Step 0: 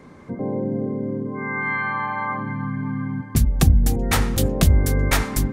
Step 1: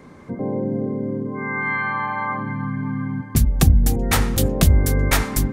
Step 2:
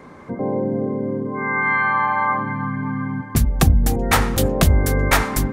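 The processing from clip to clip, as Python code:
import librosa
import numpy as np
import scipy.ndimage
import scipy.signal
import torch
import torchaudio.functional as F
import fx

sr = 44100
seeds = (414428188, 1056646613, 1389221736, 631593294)

y1 = fx.high_shelf(x, sr, hz=11000.0, db=4.0)
y1 = y1 * librosa.db_to_amplitude(1.0)
y2 = fx.peak_eq(y1, sr, hz=1000.0, db=7.0, octaves=2.7)
y2 = y2 * librosa.db_to_amplitude(-1.0)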